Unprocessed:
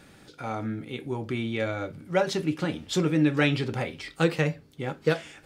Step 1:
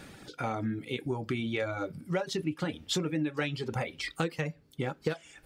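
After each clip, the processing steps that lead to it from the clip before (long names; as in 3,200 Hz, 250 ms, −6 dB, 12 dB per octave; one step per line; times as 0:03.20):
reverb reduction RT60 0.9 s
downward compressor 6 to 1, threshold −33 dBFS, peak gain reduction 15 dB
level +4.5 dB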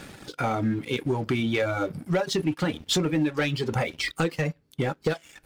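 leveller curve on the samples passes 2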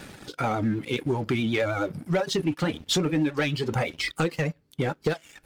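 pitch vibrato 9.4 Hz 57 cents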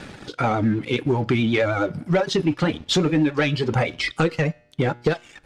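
high-frequency loss of the air 68 metres
tuned comb filter 120 Hz, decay 0.69 s, harmonics all, mix 30%
level +8 dB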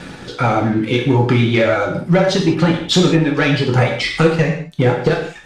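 convolution reverb, pre-delay 3 ms, DRR 0 dB
level +3.5 dB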